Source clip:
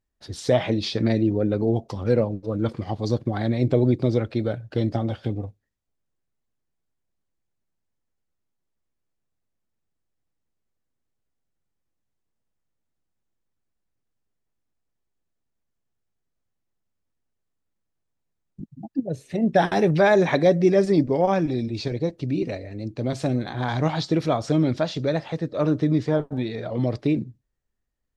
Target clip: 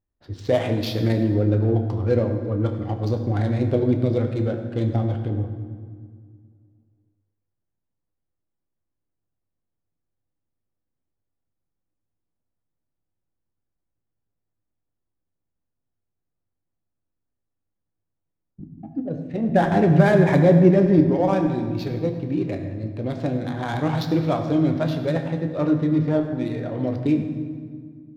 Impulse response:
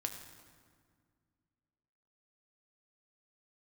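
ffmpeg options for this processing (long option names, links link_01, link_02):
-filter_complex "[0:a]asettb=1/sr,asplit=3[link_01][link_02][link_03];[link_01]atrim=end=19.494[link_04];[link_02]atrim=start=19.49:end=20.99,asetpts=PTS-STARTPTS,afade=type=in:duration=0.004:curve=qsin,afade=type=out:start_time=1.496:duration=0.004:curve=qsin,bass=frequency=250:gain=9,treble=frequency=4000:gain=-13[link_05];[link_03]atrim=start=20.986[link_06];[link_04][link_05]acrossfade=duration=0.004:curve1=hsin:curve2=qsin[link_07];[link_07][link_06]acrossfade=duration=0.004:curve1=qsin:curve2=hsin,adynamicsmooth=sensitivity=5:basefreq=1700[link_08];[1:a]atrim=start_sample=2205[link_09];[link_08][link_09]afir=irnorm=-1:irlink=0"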